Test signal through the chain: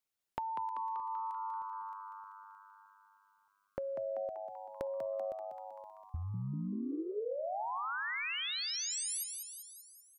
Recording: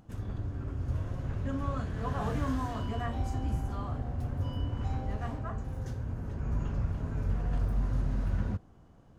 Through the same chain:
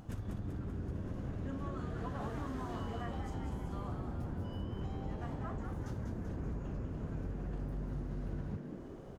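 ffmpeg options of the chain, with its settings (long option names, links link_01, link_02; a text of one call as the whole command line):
ffmpeg -i in.wav -filter_complex "[0:a]acompressor=threshold=-43dB:ratio=12,asplit=8[link_01][link_02][link_03][link_04][link_05][link_06][link_07][link_08];[link_02]adelay=193,afreqshift=100,volume=-6dB[link_09];[link_03]adelay=386,afreqshift=200,volume=-10.9dB[link_10];[link_04]adelay=579,afreqshift=300,volume=-15.8dB[link_11];[link_05]adelay=772,afreqshift=400,volume=-20.6dB[link_12];[link_06]adelay=965,afreqshift=500,volume=-25.5dB[link_13];[link_07]adelay=1158,afreqshift=600,volume=-30.4dB[link_14];[link_08]adelay=1351,afreqshift=700,volume=-35.3dB[link_15];[link_01][link_09][link_10][link_11][link_12][link_13][link_14][link_15]amix=inputs=8:normalize=0,volume=5.5dB" out.wav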